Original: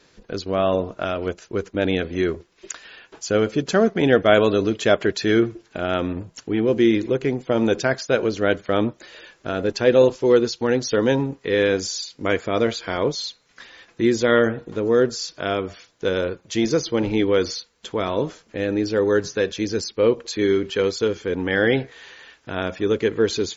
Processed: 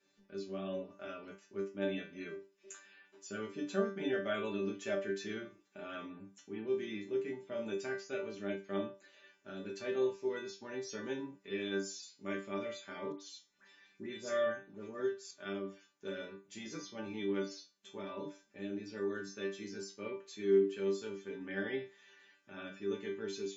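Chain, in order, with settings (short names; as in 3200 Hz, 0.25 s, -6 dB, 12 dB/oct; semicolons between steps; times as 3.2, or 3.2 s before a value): tilt shelf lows +3.5 dB, about 1200 Hz; resonator bank G3 fifth, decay 0.27 s; 13.12–15.31 dispersion highs, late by 88 ms, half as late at 2200 Hz; reverb, pre-delay 3 ms, DRR 6 dB; gain -3 dB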